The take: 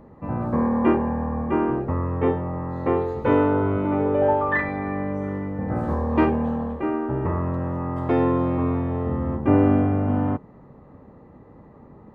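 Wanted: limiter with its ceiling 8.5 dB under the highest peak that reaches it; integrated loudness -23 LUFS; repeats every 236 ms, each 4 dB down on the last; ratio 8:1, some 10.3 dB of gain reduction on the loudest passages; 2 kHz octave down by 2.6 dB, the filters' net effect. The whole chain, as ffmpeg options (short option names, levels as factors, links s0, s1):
-af "equalizer=f=2000:t=o:g=-3,acompressor=threshold=0.0631:ratio=8,alimiter=limit=0.0708:level=0:latency=1,aecho=1:1:236|472|708|944|1180|1416|1652|1888|2124:0.631|0.398|0.25|0.158|0.0994|0.0626|0.0394|0.0249|0.0157,volume=2.11"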